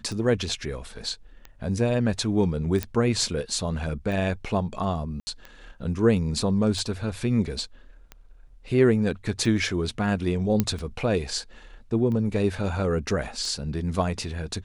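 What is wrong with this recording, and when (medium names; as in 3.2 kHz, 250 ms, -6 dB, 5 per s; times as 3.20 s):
tick 45 rpm
2.83 s: pop -11 dBFS
5.20–5.27 s: dropout 70 ms
10.60 s: pop -8 dBFS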